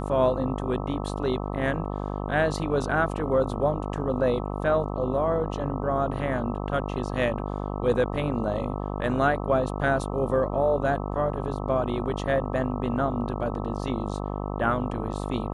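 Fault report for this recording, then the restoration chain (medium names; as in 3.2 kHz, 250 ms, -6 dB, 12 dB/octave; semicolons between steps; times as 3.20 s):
buzz 50 Hz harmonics 26 -31 dBFS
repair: de-hum 50 Hz, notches 26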